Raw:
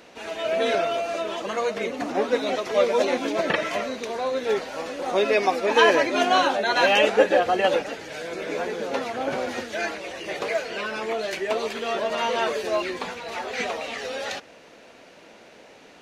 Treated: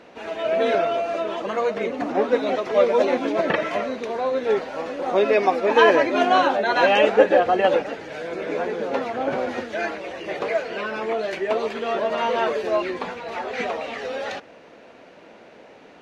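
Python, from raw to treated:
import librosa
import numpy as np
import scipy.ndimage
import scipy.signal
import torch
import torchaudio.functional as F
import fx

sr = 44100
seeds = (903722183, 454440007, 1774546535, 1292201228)

y = fx.lowpass(x, sr, hz=1700.0, slope=6)
y = fx.low_shelf(y, sr, hz=74.0, db=-5.5)
y = y * 10.0 ** (3.5 / 20.0)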